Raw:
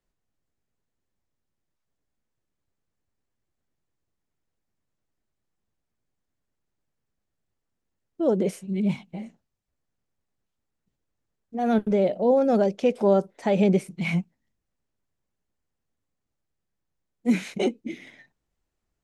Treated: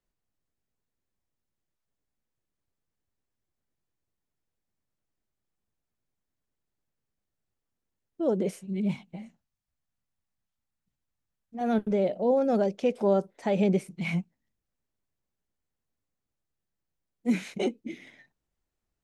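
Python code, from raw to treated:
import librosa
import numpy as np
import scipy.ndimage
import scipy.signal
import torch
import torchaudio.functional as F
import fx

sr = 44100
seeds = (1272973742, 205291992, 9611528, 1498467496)

y = fx.peak_eq(x, sr, hz=410.0, db=-9.0, octaves=1.1, at=(9.16, 11.61))
y = y * 10.0 ** (-4.0 / 20.0)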